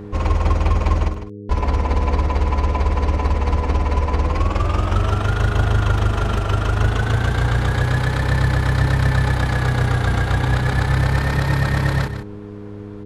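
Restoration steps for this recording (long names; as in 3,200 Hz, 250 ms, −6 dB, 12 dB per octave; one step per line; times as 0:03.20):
hum removal 102.8 Hz, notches 4
notch filter 490 Hz, Q 30
echo removal 153 ms −10.5 dB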